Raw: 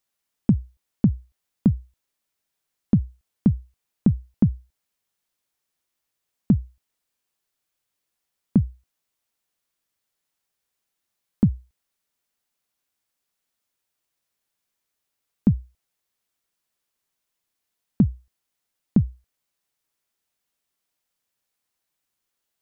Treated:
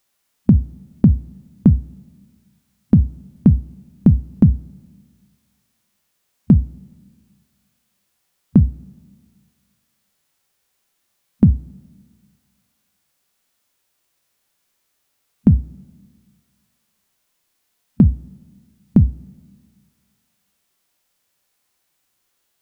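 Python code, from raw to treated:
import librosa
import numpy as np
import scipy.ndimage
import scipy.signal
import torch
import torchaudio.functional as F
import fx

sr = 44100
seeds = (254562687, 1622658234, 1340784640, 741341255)

y = fx.rev_double_slope(x, sr, seeds[0], early_s=0.24, late_s=1.8, knee_db=-19, drr_db=16.0)
y = fx.hpss(y, sr, part='harmonic', gain_db=8)
y = F.gain(torch.from_numpy(y), 5.5).numpy()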